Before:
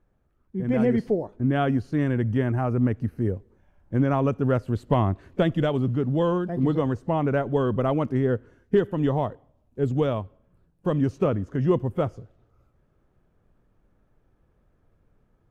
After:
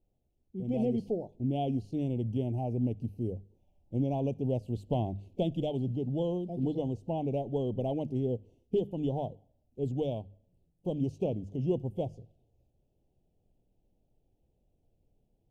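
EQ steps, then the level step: Chebyshev band-stop 790–2700 Hz, order 3; hum notches 50/100/150/200 Hz; -7.5 dB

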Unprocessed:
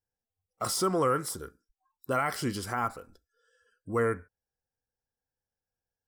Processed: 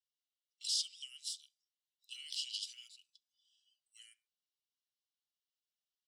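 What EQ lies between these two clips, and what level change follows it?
rippled Chebyshev high-pass 2.8 kHz, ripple 3 dB; distance through air 130 m; treble shelf 5.3 kHz -5 dB; +11.5 dB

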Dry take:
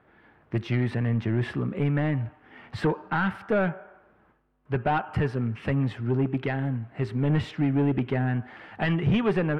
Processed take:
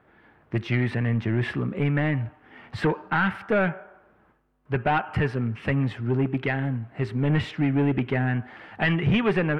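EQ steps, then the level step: dynamic bell 2.2 kHz, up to +6 dB, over -44 dBFS, Q 1.2; +1.0 dB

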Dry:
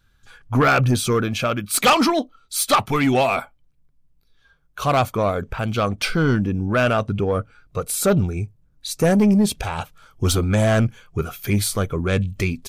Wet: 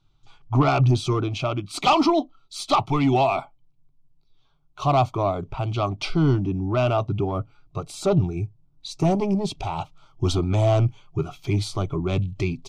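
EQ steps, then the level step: distance through air 140 m; static phaser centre 330 Hz, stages 8; +1.5 dB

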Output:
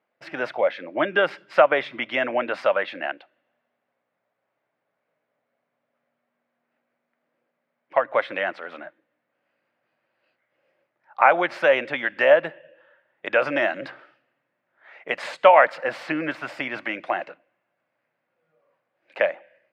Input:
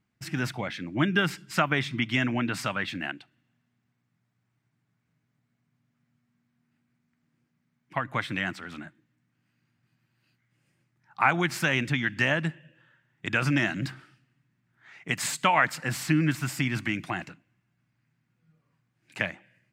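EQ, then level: resonant high-pass 550 Hz, resonance Q 5.6; distance through air 310 m; peaking EQ 9.1 kHz +6.5 dB 0.34 oct; +5.0 dB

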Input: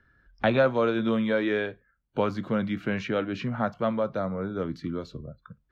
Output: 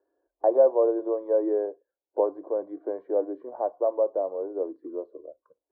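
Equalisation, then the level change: elliptic band-pass 300–1200 Hz, stop band 40 dB; distance through air 290 m; static phaser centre 540 Hz, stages 4; +5.5 dB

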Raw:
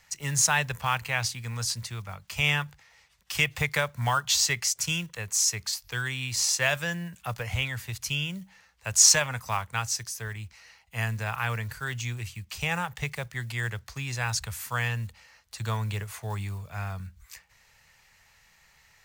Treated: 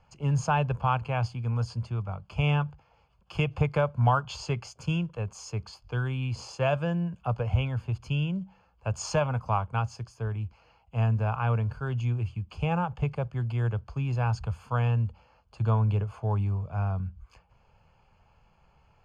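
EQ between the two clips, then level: boxcar filter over 23 samples; distance through air 60 m; +6.5 dB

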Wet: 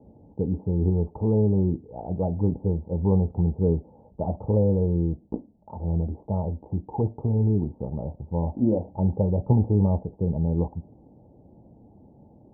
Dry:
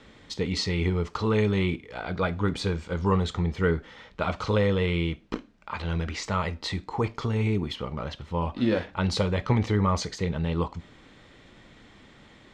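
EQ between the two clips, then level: high-pass 65 Hz; Chebyshev low-pass 870 Hz, order 6; bass shelf 200 Hz +7 dB; 0.0 dB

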